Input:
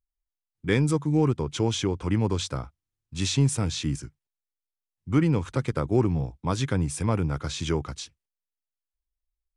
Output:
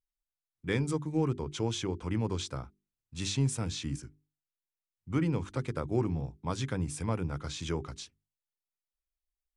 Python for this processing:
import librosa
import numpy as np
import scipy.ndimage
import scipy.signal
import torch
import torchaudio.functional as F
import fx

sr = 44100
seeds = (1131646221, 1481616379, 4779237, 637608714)

y = fx.wow_flutter(x, sr, seeds[0], rate_hz=2.1, depth_cents=29.0)
y = fx.hum_notches(y, sr, base_hz=50, count=8)
y = F.gain(torch.from_numpy(y), -6.5).numpy()